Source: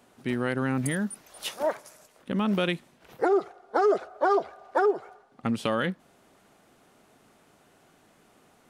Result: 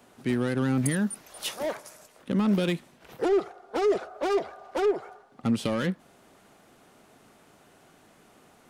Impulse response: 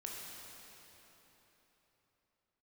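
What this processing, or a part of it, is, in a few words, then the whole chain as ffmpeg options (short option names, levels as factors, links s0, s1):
one-band saturation: -filter_complex "[0:a]acrossover=split=410|3900[s0][s1][s2];[s1]asoftclip=type=tanh:threshold=0.0211[s3];[s0][s3][s2]amix=inputs=3:normalize=0,volume=1.41"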